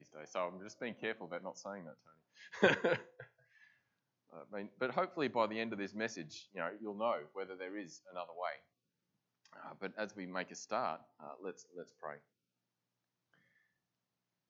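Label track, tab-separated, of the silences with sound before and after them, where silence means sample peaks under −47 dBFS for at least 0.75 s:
3.230000	4.330000	silence
8.560000	9.530000	silence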